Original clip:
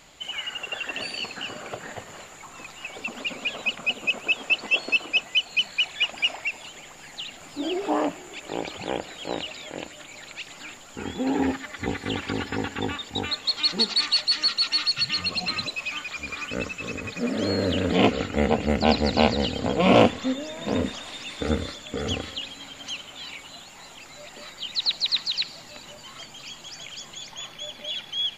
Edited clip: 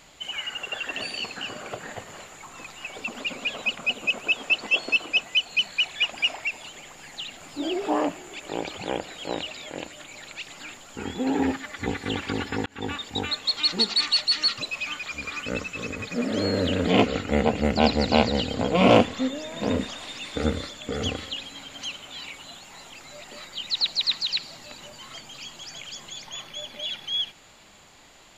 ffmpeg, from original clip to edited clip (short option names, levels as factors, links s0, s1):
-filter_complex "[0:a]asplit=3[s0][s1][s2];[s0]atrim=end=12.66,asetpts=PTS-STARTPTS,afade=t=out:st=12.656:d=0.004:c=hsin[s3];[s1]atrim=start=12.66:end=14.582,asetpts=PTS-STARTPTS,afade=t=in:d=0.27[s4];[s2]atrim=start=15.628[s5];[s3][s4]concat=n=2:v=0:a=1[s6];[s6][s5]acrossfade=d=0.004:c1=hsin:c2=hsin"